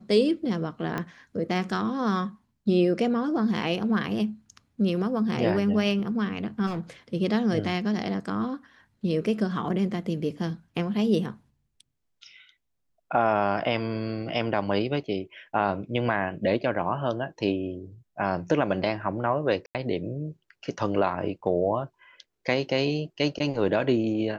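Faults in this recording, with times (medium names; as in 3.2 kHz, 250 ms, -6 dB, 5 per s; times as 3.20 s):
0.98 s: pop -16 dBFS
6.66–6.81 s: clipped -25.5 dBFS
19.66–19.75 s: dropout 88 ms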